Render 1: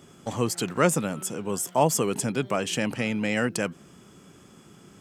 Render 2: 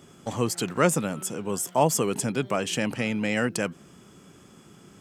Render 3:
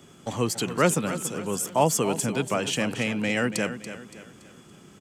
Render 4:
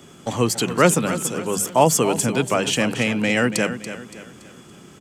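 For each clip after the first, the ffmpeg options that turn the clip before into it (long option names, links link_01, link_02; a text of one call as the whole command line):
ffmpeg -i in.wav -af anull out.wav
ffmpeg -i in.wav -filter_complex "[0:a]bandreject=frequency=5100:width=22,acrossover=split=270|1600|4100[link_01][link_02][link_03][link_04];[link_03]crystalizer=i=2:c=0[link_05];[link_01][link_02][link_05][link_04]amix=inputs=4:normalize=0,aecho=1:1:284|568|852|1136:0.266|0.109|0.0447|0.0183" out.wav
ffmpeg -i in.wav -af "bandreject=frequency=50:width_type=h:width=6,bandreject=frequency=100:width_type=h:width=6,bandreject=frequency=150:width_type=h:width=6,bandreject=frequency=200:width_type=h:width=6,volume=6dB" out.wav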